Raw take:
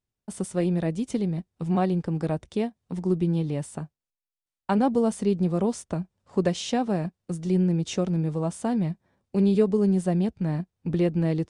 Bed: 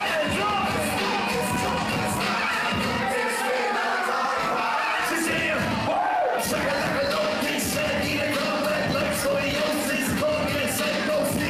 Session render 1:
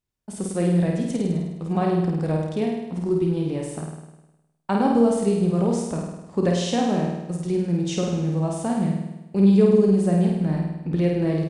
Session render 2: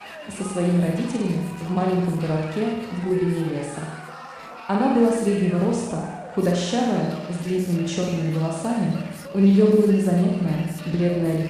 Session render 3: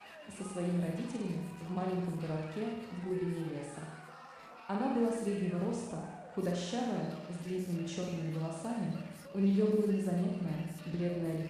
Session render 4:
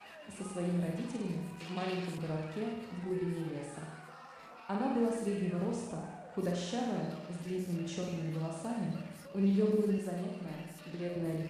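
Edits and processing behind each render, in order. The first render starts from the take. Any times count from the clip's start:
doubling 30 ms -10.5 dB; flutter echo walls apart 8.8 m, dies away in 1 s
add bed -14 dB
trim -13.5 dB
1.60–2.18 s: frequency weighting D; 9.98–11.16 s: peaking EQ 77 Hz -14.5 dB 2.2 oct

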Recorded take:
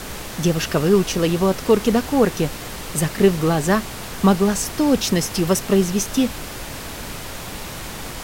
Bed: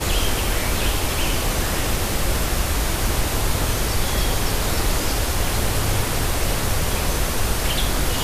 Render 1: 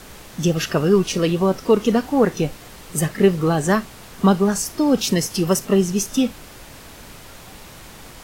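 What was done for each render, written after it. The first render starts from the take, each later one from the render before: noise print and reduce 9 dB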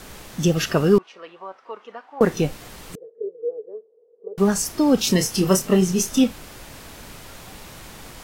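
0.98–2.21 s: ladder band-pass 1.2 kHz, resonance 20%; 2.95–4.38 s: Butterworth band-pass 460 Hz, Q 7.7; 5.04–6.24 s: doubling 27 ms -7 dB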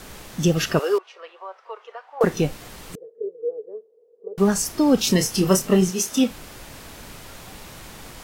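0.79–2.24 s: steep high-pass 420 Hz; 5.89–6.30 s: high-pass 560 Hz -> 160 Hz 6 dB/octave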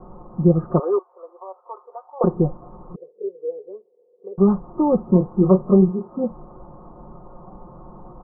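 Chebyshev low-pass 1.2 kHz, order 6; comb 5.6 ms, depth 75%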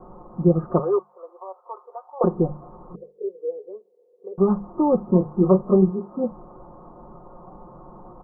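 bass shelf 180 Hz -5 dB; hum notches 50/100/150/200 Hz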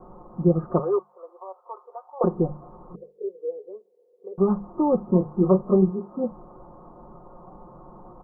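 trim -2 dB

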